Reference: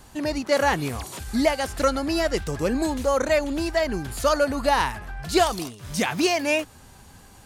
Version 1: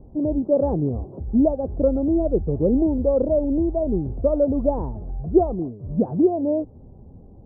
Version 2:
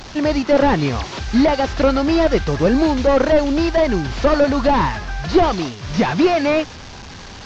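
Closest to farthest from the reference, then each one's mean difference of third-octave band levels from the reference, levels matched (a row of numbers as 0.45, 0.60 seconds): 2, 1; 6.5, 15.5 decibels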